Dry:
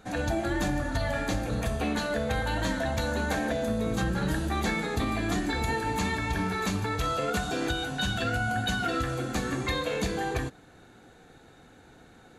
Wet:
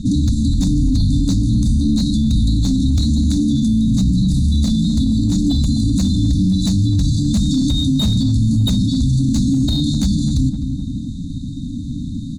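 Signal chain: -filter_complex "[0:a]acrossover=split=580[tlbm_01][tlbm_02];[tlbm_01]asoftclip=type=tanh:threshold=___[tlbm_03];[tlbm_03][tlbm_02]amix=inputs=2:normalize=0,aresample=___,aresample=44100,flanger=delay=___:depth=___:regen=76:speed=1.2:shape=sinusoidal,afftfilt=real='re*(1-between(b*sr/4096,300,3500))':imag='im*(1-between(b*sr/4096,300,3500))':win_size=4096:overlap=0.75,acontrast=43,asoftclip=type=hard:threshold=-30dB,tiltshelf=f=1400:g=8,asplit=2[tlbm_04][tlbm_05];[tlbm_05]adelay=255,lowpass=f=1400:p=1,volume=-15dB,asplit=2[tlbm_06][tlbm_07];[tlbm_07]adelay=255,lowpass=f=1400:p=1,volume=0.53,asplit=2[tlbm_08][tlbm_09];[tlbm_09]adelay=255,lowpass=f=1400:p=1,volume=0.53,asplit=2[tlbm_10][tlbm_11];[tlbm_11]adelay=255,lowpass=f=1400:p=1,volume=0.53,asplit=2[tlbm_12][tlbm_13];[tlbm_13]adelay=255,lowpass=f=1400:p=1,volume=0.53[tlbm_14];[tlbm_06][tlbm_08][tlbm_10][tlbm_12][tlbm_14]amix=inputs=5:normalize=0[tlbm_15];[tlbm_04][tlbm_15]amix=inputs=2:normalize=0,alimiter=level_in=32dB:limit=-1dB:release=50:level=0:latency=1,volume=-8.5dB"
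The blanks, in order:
-36dB, 22050, 3, 8.4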